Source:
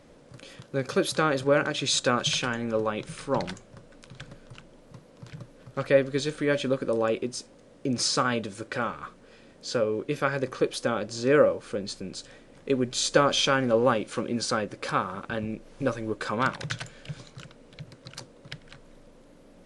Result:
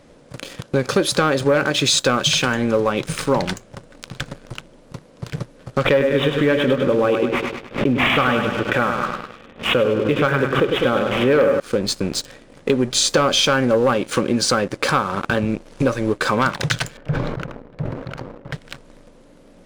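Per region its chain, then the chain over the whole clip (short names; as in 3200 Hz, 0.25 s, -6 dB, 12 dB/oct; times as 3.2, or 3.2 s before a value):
5.85–11.6 careless resampling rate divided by 6×, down none, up filtered + feedback echo 0.101 s, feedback 53%, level -7 dB + backwards sustainer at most 150 dB/s
16.97–18.53 LPF 1300 Hz + sustainer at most 36 dB/s
whole clip: sample leveller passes 2; compressor 3:1, threshold -26 dBFS; gain +9 dB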